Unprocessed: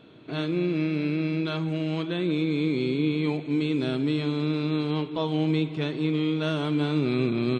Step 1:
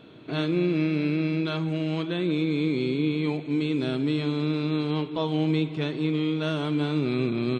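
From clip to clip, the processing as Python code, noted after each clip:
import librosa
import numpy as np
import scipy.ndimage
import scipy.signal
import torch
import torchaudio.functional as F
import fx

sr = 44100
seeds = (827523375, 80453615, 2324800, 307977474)

y = fx.rider(x, sr, range_db=4, speed_s=2.0)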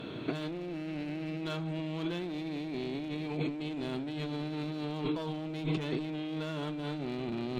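y = fx.clip_asym(x, sr, top_db=-26.0, bottom_db=-19.5)
y = fx.over_compress(y, sr, threshold_db=-36.0, ratio=-1.0)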